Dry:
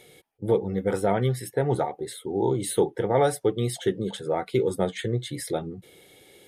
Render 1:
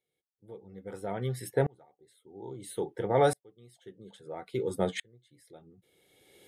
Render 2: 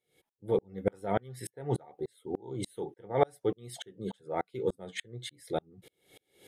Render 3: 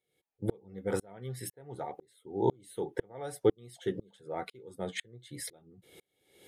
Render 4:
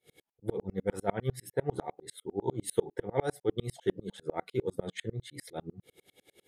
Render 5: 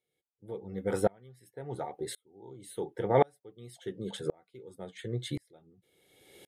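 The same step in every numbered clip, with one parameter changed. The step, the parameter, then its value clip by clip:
dB-ramp tremolo, rate: 0.6, 3.4, 2, 10, 0.93 Hz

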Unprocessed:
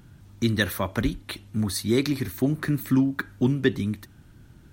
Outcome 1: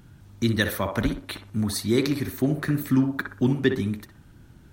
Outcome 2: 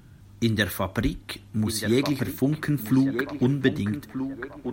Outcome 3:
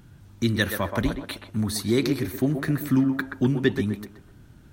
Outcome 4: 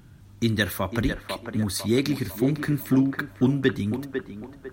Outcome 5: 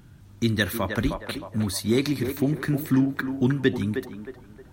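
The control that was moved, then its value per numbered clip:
narrowing echo, time: 62, 1235, 127, 500, 312 ms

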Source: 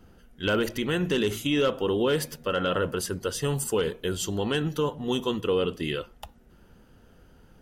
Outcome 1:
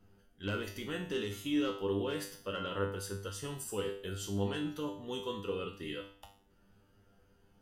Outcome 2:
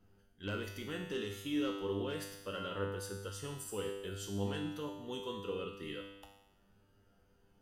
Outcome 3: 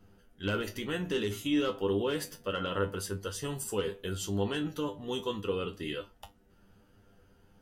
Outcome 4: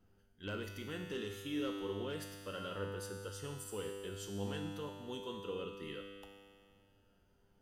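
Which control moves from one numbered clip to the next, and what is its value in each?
resonator, decay: 0.48, 1, 0.17, 2.1 s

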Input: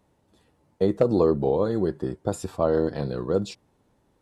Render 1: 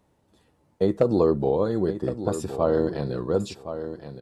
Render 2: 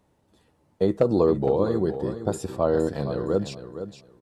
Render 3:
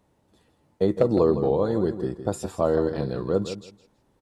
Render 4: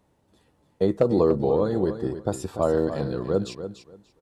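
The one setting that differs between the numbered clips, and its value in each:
feedback echo, time: 1.067, 0.464, 0.161, 0.291 s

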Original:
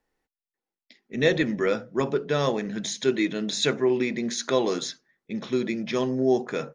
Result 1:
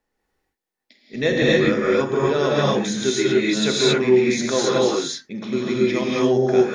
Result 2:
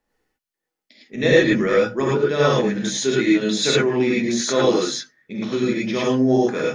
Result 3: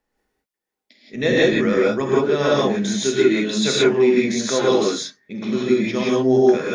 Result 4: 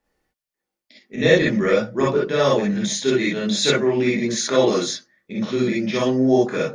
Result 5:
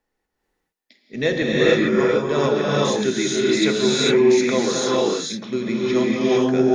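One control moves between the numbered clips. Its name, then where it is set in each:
non-linear reverb, gate: 300, 130, 200, 80, 480 ms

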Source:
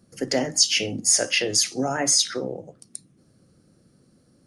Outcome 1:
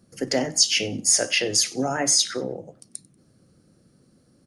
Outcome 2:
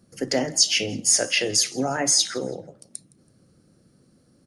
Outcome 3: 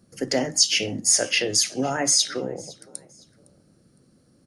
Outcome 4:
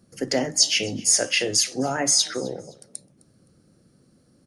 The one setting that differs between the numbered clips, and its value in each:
frequency-shifting echo, time: 94, 164, 510, 259 ms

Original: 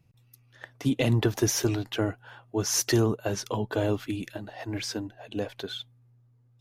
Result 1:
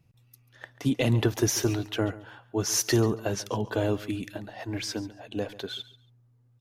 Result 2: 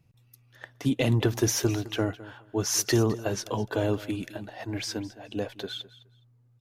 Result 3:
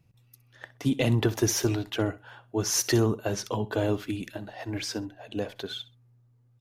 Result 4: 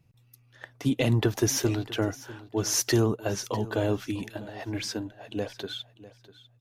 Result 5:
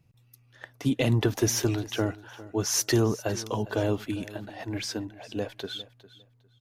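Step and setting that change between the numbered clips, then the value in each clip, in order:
feedback echo, time: 139, 210, 64, 648, 404 ms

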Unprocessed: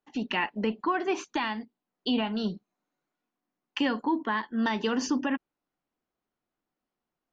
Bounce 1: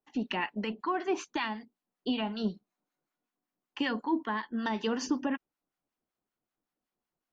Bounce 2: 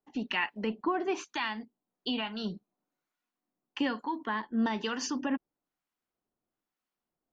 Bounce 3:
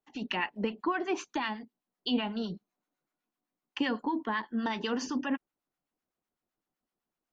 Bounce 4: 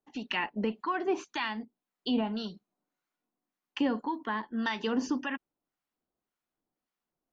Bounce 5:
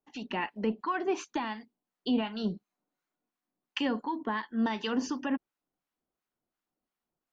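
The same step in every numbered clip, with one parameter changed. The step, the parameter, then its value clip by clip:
harmonic tremolo, rate: 5.3, 1.1, 7.9, 1.8, 2.8 Hz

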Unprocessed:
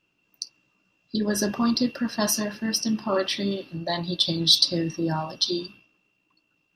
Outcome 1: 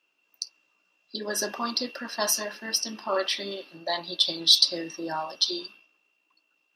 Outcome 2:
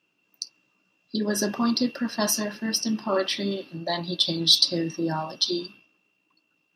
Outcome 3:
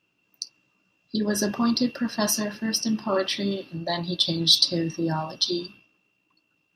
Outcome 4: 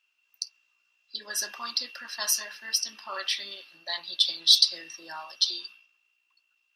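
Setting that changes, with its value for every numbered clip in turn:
HPF, cutoff: 500, 170, 56, 1500 Hz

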